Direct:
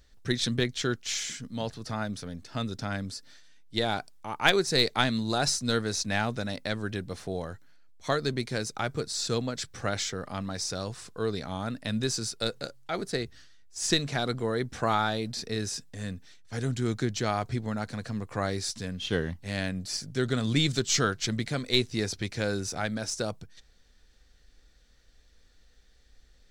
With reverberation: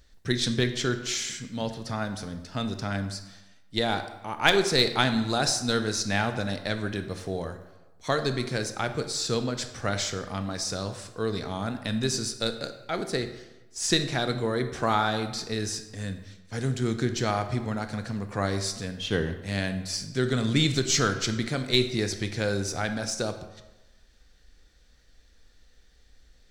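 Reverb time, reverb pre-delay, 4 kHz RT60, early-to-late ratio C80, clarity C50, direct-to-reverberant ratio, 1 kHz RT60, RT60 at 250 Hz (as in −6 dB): 1.1 s, 20 ms, 0.75 s, 12.0 dB, 10.0 dB, 8.0 dB, 1.1 s, 1.0 s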